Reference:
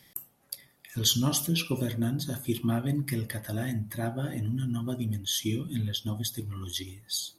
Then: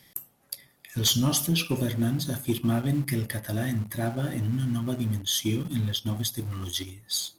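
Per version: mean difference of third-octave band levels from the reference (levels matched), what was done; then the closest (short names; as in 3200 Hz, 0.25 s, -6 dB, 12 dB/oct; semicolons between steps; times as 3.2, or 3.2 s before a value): 2.5 dB: in parallel at -11.5 dB: requantised 6-bit, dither none; on the sum: sine folder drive 5 dB, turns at -8.5 dBFS; gain -7.5 dB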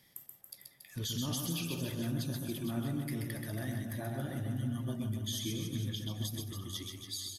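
6.0 dB: limiter -21.5 dBFS, peak gain reduction 10 dB; on a send: reverse bouncing-ball echo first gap 0.13 s, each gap 1.15×, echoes 5; on the sum: gain -7 dB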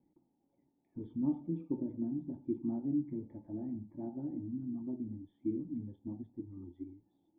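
14.5 dB: vocal tract filter u; bell 120 Hz -12.5 dB 0.22 oct; gain +1 dB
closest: first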